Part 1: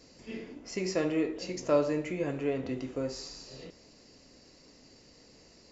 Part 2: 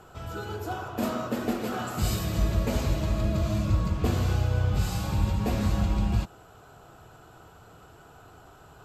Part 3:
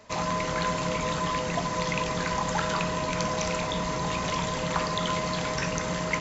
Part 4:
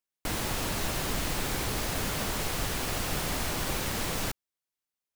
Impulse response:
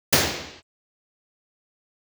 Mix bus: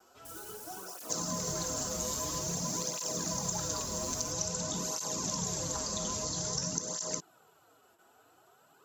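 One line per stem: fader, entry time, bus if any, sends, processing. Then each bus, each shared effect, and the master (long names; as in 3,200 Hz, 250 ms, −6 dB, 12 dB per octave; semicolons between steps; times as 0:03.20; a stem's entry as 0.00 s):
−18.5 dB, 0.00 s, bus A, no send, no processing
−8.0 dB, 0.00 s, no bus, no send, high-pass filter 270 Hz 12 dB per octave; brickwall limiter −28 dBFS, peak gain reduction 10 dB
+1.0 dB, 1.00 s, bus A, no send, no processing
−17.0 dB, 0.00 s, bus A, no send, brickwall limiter −28.5 dBFS, peak gain reduction 10 dB
bus A: 0.0 dB, drawn EQ curve 420 Hz 0 dB, 1,600 Hz −9 dB, 2,300 Hz −18 dB, 5,900 Hz +10 dB; downward compressor, threshold −31 dBFS, peak gain reduction 12.5 dB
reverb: not used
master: noise gate with hold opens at −52 dBFS; high-shelf EQ 5,900 Hz +8.5 dB; through-zero flanger with one copy inverted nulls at 0.5 Hz, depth 7.2 ms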